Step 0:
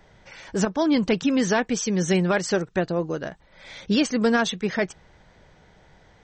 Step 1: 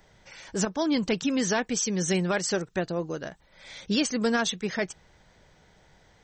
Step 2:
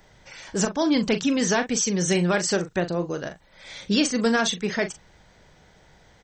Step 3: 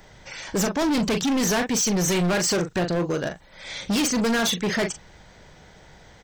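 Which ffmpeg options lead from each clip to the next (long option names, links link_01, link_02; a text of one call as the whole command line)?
ffmpeg -i in.wav -af "highshelf=frequency=4900:gain=10.5,volume=-5dB" out.wav
ffmpeg -i in.wav -filter_complex "[0:a]asplit=2[link_01][link_02];[link_02]adelay=40,volume=-10dB[link_03];[link_01][link_03]amix=inputs=2:normalize=0,volume=3.5dB" out.wav
ffmpeg -i in.wav -af "asoftclip=type=hard:threshold=-25.5dB,volume=5.5dB" out.wav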